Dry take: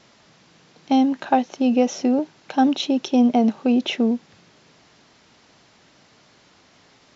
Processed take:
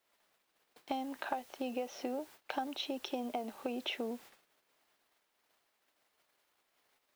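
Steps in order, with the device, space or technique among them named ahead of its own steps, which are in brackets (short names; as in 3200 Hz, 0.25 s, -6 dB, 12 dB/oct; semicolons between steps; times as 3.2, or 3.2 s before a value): baby monitor (BPF 470–4000 Hz; compressor 10:1, threshold -33 dBFS, peak gain reduction 19 dB; white noise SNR 19 dB; gate -52 dBFS, range -23 dB); gain -1.5 dB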